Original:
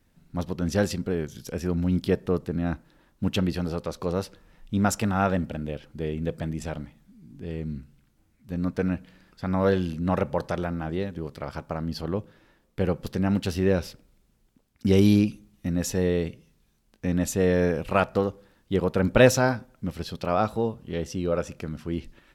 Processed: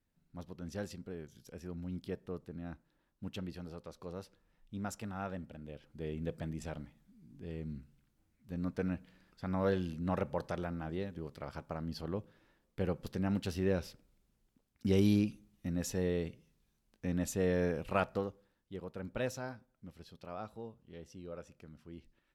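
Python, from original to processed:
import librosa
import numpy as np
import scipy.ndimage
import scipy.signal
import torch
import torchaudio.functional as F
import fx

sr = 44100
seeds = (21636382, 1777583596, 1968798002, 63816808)

y = fx.gain(x, sr, db=fx.line((5.56, -17.0), (6.13, -9.5), (18.06, -9.5), (18.74, -20.0)))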